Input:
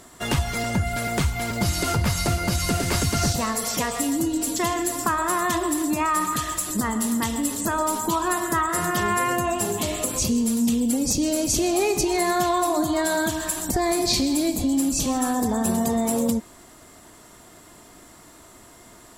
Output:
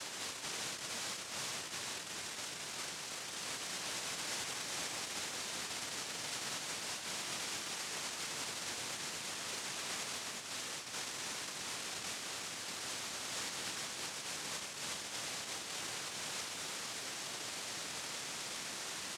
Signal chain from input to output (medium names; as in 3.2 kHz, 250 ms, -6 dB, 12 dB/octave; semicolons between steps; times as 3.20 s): compressor with a negative ratio -36 dBFS, ratio -1; flange 0.58 Hz, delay 5.7 ms, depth 7.6 ms, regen -32%; hard clipper -37 dBFS, distortion -11 dB; noise-vocoded speech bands 1; on a send: delay 370 ms -4.5 dB; on the sum: trim -2 dB